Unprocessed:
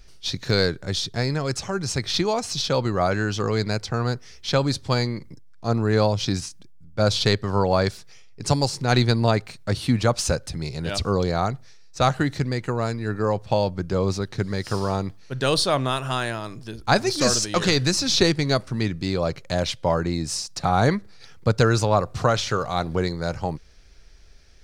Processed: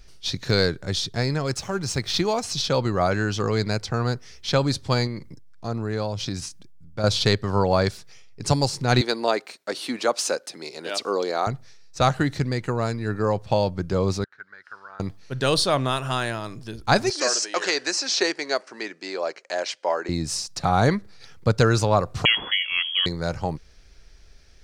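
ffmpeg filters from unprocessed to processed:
-filter_complex "[0:a]asettb=1/sr,asplit=3[s0][s1][s2];[s0]atrim=end=1.474[s3];[s1]atrim=start=1.47:end=2.43,asetpts=PTS-STARTPTS,afade=t=in:d=0.004:c=qsin,afade=t=out:st=0.956:d=0.004:c=qsin,aeval=exprs='sgn(val(0))*max(abs(val(0))-0.00398,0)':c=same[s4];[s2]atrim=start=2.426[s5];[s3][s4]acrossfade=d=0.004:c1=hsin:c2=qsin[s6];[s6][s5]acrossfade=d=0.004:c1=qsin:c2=hsin,asettb=1/sr,asplit=3[s7][s8][s9];[s7]atrim=end=5.074[s10];[s8]atrim=start=5.07:end=7.04,asetpts=PTS-STARTPTS,afade=t=in:d=0.004:c=qsin,afade=t=out:st=1.966:d=0.004:c=qsin,acompressor=threshold=0.0398:ratio=2:attack=3.2:release=140:knee=1:detection=peak[s11];[s9]atrim=start=7.036[s12];[s10][s11]acrossfade=d=0.004:c1=hsin:c2=qsin[s13];[s13][s12]acrossfade=d=0.004:c1=qsin:c2=hsin,asettb=1/sr,asplit=3[s14][s15][s16];[s14]atrim=end=9.014[s17];[s15]atrim=start=9.01:end=11.47,asetpts=PTS-STARTPTS,afade=t=in:d=0.004:c=qsin,afade=t=out:st=2.456:d=0.004:c=qsin,highpass=f=300:w=0.5412,highpass=f=300:w=1.3066[s18];[s16]atrim=start=11.466[s19];[s17][s18]acrossfade=d=0.004:c1=hsin:c2=qsin[s20];[s20][s19]acrossfade=d=0.004:c1=qsin:c2=hsin,asettb=1/sr,asplit=3[s21][s22][s23];[s21]atrim=end=14.244[s24];[s22]atrim=start=14.24:end=15,asetpts=PTS-STARTPTS,afade=t=in:d=0.004:c=qsin,afade=t=out:st=0.756:d=0.004:c=qsin,bandpass=f=1500:t=q:w=8.3[s25];[s23]atrim=start=14.996[s26];[s24][s25]acrossfade=d=0.004:c1=hsin:c2=qsin[s27];[s27][s26]acrossfade=d=0.004:c1=qsin:c2=hsin,asettb=1/sr,asplit=3[s28][s29][s30];[s28]atrim=end=17.104[s31];[s29]atrim=start=17.1:end=20.09,asetpts=PTS-STARTPTS,afade=t=in:d=0.004:c=qsin,afade=t=out:st=2.986:d=0.004:c=qsin,highpass=f=380:w=0.5412,highpass=f=380:w=1.3066,equalizer=f=490:t=q:w=4:g=-4,equalizer=f=1200:t=q:w=4:g=-3,equalizer=f=1700:t=q:w=4:g=3,equalizer=f=3600:t=q:w=4:g=-8,lowpass=f=8000:w=0.5412,lowpass=f=8000:w=1.3066[s32];[s30]atrim=start=20.086[s33];[s31][s32]acrossfade=d=0.004:c1=hsin:c2=qsin[s34];[s34][s33]acrossfade=d=0.004:c1=qsin:c2=hsin,asettb=1/sr,asplit=3[s35][s36][s37];[s35]atrim=end=22.254[s38];[s36]atrim=start=22.25:end=23.06,asetpts=PTS-STARTPTS,afade=t=in:d=0.004:c=qsin,afade=t=out:st=0.806:d=0.004:c=qsin,lowpass=f=2900:t=q:w=0.5098,lowpass=f=2900:t=q:w=0.6013,lowpass=f=2900:t=q:w=0.9,lowpass=f=2900:t=q:w=2.563,afreqshift=-3400[s39];[s37]atrim=start=23.056[s40];[s38][s39]acrossfade=d=0.004:c1=hsin:c2=qsin[s41];[s41][s40]acrossfade=d=0.004:c1=qsin:c2=hsin"

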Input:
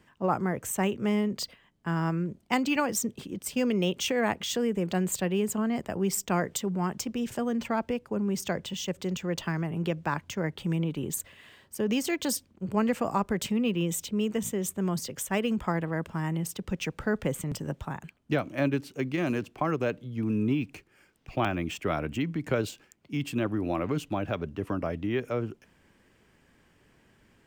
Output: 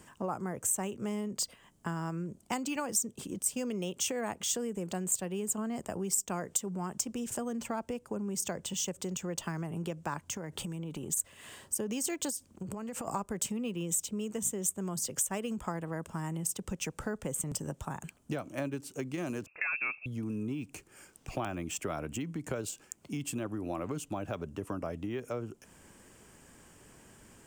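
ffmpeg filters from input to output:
-filter_complex "[0:a]asplit=3[s0][s1][s2];[s0]afade=t=out:st=10.23:d=0.02[s3];[s1]acompressor=threshold=0.0178:ratio=6:attack=3.2:release=140:knee=1:detection=peak,afade=t=in:st=10.23:d=0.02,afade=t=out:st=11.16:d=0.02[s4];[s2]afade=t=in:st=11.16:d=0.02[s5];[s3][s4][s5]amix=inputs=3:normalize=0,asplit=3[s6][s7][s8];[s6]afade=t=out:st=12.29:d=0.02[s9];[s7]acompressor=threshold=0.0158:ratio=12:attack=3.2:release=140:knee=1:detection=peak,afade=t=in:st=12.29:d=0.02,afade=t=out:st=13.07:d=0.02[s10];[s8]afade=t=in:st=13.07:d=0.02[s11];[s9][s10][s11]amix=inputs=3:normalize=0,asettb=1/sr,asplit=3[s12][s13][s14];[s12]atrim=end=19.464[s15];[s13]atrim=start=19.46:end=20.06,asetpts=PTS-STARTPTS,afade=t=in:d=0.004:c=qsin,afade=t=out:st=0.596:d=0.004:c=qsin,lowpass=f=2400:t=q:w=0.5098,lowpass=f=2400:t=q:w=0.6013,lowpass=f=2400:t=q:w=0.9,lowpass=f=2400:t=q:w=2.563,afreqshift=-2800[s16];[s14]atrim=start=20.056[s17];[s15][s16]acrossfade=d=0.004:c1=hsin:c2=qsin[s18];[s18][s17]acrossfade=d=0.004:c1=qsin:c2=hsin,equalizer=f=2000:t=o:w=1:g=-7,equalizer=f=4000:t=o:w=1:g=-7,equalizer=f=8000:t=o:w=1:g=9,acompressor=threshold=0.00708:ratio=3,tiltshelf=f=840:g=-3,volume=2.37"

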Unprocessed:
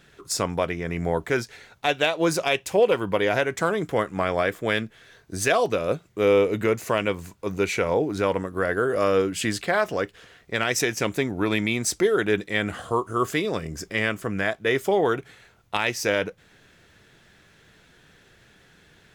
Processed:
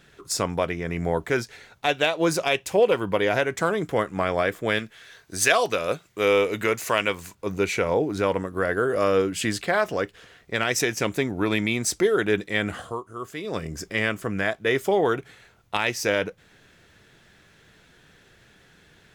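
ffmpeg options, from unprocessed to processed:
-filter_complex "[0:a]asettb=1/sr,asplit=3[s0][s1][s2];[s0]atrim=end=4.794[s3];[s1]atrim=start=4.79:end=7.35,asetpts=PTS-STARTPTS,afade=t=in:d=0.004:c=qsin,afade=t=out:st=2.556:d=0.004:c=qsin,tiltshelf=f=700:g=-5.5[s4];[s2]atrim=start=7.346[s5];[s3][s4]acrossfade=d=0.004:c1=hsin:c2=qsin[s6];[s6][s5]acrossfade=d=0.004:c1=qsin:c2=hsin,asplit=3[s7][s8][s9];[s7]atrim=end=13.07,asetpts=PTS-STARTPTS,afade=t=out:st=12.8:d=0.27:c=qua:silence=0.281838[s10];[s8]atrim=start=13.07:end=13.31,asetpts=PTS-STARTPTS,volume=0.282[s11];[s9]atrim=start=13.31,asetpts=PTS-STARTPTS,afade=t=in:d=0.27:c=qua:silence=0.281838[s12];[s10][s11][s12]concat=n=3:v=0:a=1"

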